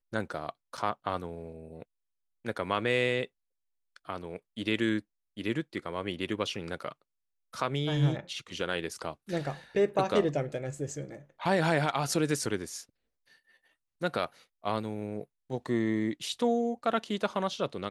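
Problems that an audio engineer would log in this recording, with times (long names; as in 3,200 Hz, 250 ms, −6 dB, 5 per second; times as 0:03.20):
0:00.77–0:00.78: drop-out 6.8 ms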